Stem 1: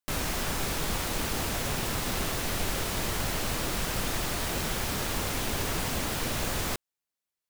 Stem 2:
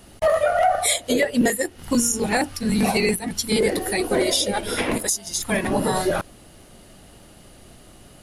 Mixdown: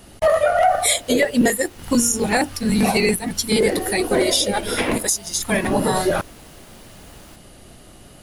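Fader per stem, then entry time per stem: −16.5, +2.5 decibels; 0.60, 0.00 seconds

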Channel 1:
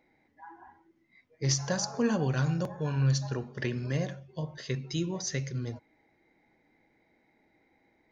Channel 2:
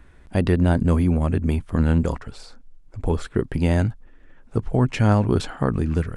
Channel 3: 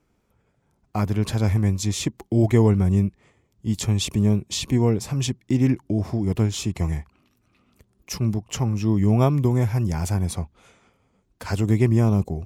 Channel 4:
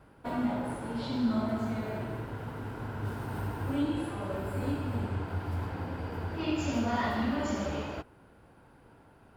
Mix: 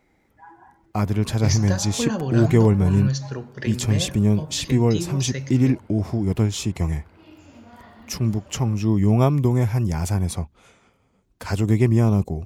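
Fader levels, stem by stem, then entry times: +2.5 dB, muted, +1.0 dB, −16.5 dB; 0.00 s, muted, 0.00 s, 0.80 s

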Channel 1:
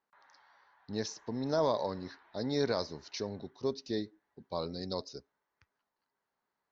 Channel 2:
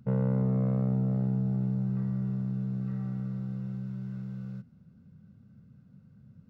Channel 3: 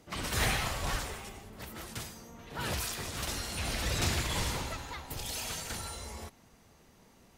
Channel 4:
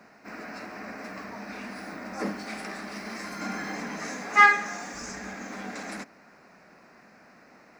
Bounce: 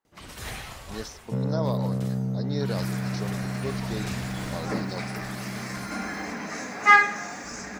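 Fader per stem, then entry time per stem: −1.0, −0.5, −7.0, +1.0 decibels; 0.00, 1.25, 0.05, 2.50 seconds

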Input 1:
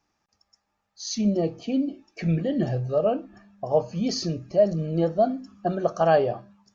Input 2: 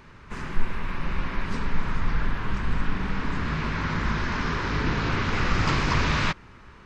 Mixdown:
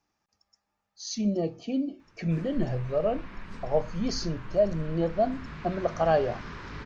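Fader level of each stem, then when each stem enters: −4.0, −13.5 decibels; 0.00, 2.00 seconds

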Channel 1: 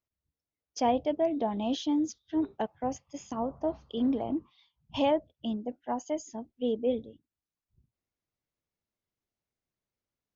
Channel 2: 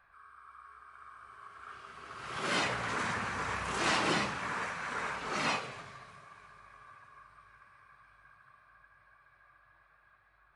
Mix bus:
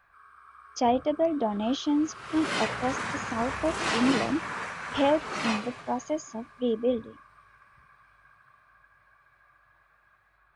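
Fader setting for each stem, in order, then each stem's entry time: +2.5, +1.5 decibels; 0.00, 0.00 seconds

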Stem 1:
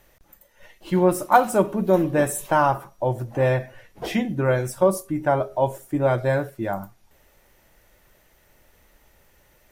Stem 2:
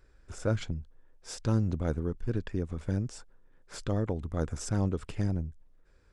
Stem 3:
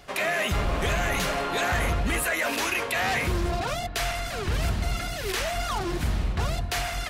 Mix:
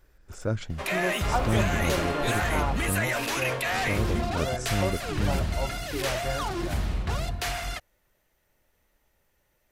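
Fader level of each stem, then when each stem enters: −12.5, +0.5, −2.0 decibels; 0.00, 0.00, 0.70 seconds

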